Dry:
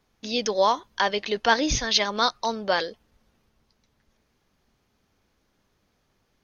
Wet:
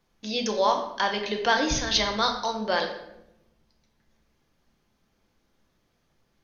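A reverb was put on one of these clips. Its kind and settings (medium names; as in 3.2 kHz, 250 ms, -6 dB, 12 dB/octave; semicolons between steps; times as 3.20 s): simulated room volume 250 m³, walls mixed, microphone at 0.78 m; trim -3 dB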